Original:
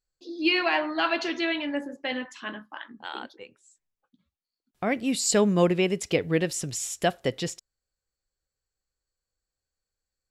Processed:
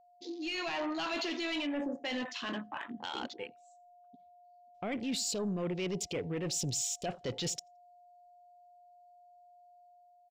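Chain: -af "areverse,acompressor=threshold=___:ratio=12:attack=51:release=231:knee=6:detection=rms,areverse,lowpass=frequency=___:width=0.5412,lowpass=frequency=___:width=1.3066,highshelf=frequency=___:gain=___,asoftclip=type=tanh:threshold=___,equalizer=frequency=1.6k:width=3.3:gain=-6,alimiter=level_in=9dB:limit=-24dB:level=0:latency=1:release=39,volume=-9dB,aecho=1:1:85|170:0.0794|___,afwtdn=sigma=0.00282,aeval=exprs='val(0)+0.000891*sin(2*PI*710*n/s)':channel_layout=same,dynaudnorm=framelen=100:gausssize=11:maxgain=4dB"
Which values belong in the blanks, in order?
-31dB, 7k, 7k, 2.9k, 7.5, -29dB, 0.0191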